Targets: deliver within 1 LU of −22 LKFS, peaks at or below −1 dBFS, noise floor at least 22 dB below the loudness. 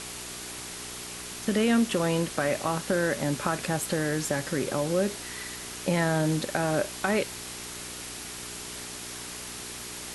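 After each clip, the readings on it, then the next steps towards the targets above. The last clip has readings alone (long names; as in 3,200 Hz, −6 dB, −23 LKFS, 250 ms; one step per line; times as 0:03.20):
mains hum 60 Hz; hum harmonics up to 420 Hz; level of the hum −48 dBFS; background noise floor −39 dBFS; target noise floor −52 dBFS; integrated loudness −29.5 LKFS; sample peak −9.5 dBFS; target loudness −22.0 LKFS
→ hum removal 60 Hz, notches 7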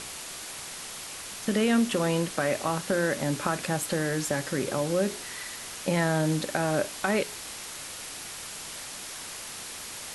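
mains hum none found; background noise floor −40 dBFS; target noise floor −52 dBFS
→ broadband denoise 12 dB, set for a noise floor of −40 dBFS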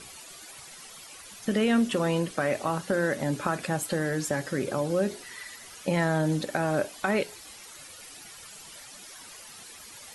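background noise floor −47 dBFS; target noise floor −50 dBFS
→ broadband denoise 6 dB, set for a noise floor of −47 dBFS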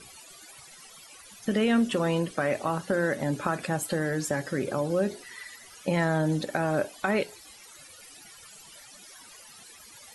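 background noise floor −50 dBFS; integrated loudness −28.0 LKFS; sample peak −10.0 dBFS; target loudness −22.0 LKFS
→ level +6 dB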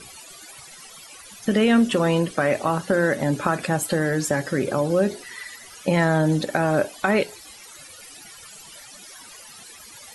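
integrated loudness −22.0 LKFS; sample peak −4.0 dBFS; background noise floor −44 dBFS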